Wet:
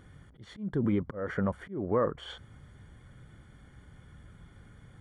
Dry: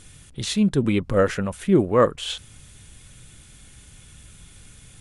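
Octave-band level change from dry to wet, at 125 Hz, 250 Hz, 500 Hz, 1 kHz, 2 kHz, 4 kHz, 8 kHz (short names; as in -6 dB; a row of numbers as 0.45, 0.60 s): -9.5 dB, -10.5 dB, -11.0 dB, -10.5 dB, -10.5 dB, -17.0 dB, under -25 dB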